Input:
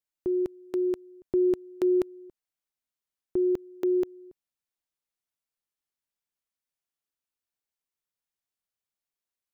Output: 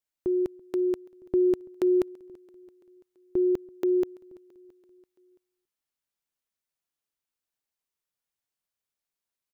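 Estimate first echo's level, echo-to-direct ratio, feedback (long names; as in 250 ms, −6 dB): −24.0 dB, −22.5 dB, 57%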